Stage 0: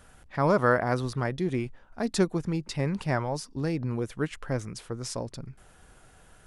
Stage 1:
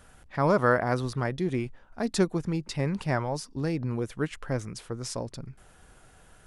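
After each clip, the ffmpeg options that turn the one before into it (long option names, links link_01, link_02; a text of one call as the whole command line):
ffmpeg -i in.wav -af anull out.wav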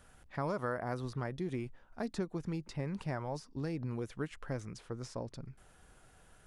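ffmpeg -i in.wav -filter_complex "[0:a]acrossover=split=1800|7200[link_01][link_02][link_03];[link_01]acompressor=threshold=-27dB:ratio=4[link_04];[link_02]acompressor=threshold=-47dB:ratio=4[link_05];[link_03]acompressor=threshold=-60dB:ratio=4[link_06];[link_04][link_05][link_06]amix=inputs=3:normalize=0,volume=-6dB" out.wav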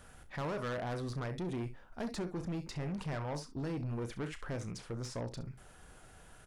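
ffmpeg -i in.wav -filter_complex "[0:a]asplit=2[link_01][link_02];[link_02]aecho=0:1:34|66:0.251|0.168[link_03];[link_01][link_03]amix=inputs=2:normalize=0,asoftclip=type=tanh:threshold=-38dB,volume=4.5dB" out.wav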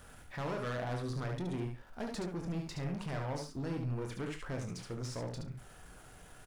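ffmpeg -i in.wav -af "aeval=exprs='val(0)+0.5*0.00106*sgn(val(0))':channel_layout=same,aecho=1:1:23|73:0.335|0.531,volume=-1.5dB" out.wav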